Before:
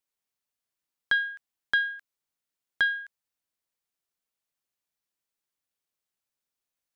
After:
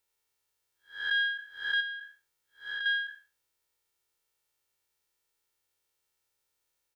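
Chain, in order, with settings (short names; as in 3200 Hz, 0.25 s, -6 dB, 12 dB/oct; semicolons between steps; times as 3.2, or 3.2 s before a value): time blur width 0.224 s; comb 2.2 ms, depth 62%; 1.8–2.86 compressor 4:1, threshold -42 dBFS, peak gain reduction 8.5 dB; gain +7.5 dB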